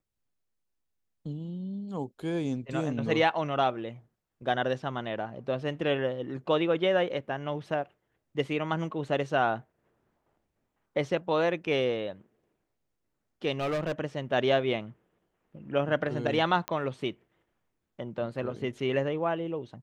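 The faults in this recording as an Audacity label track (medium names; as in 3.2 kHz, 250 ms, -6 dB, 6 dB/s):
13.520000	13.920000	clipped -26.5 dBFS
16.680000	16.680000	pop -15 dBFS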